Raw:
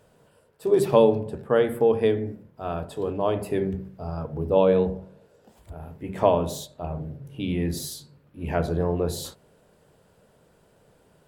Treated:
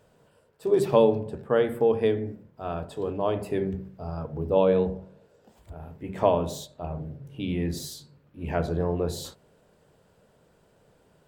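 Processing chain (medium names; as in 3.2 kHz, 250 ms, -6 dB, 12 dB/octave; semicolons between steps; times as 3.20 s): peaking EQ 11 kHz -8.5 dB 0.32 oct; trim -2 dB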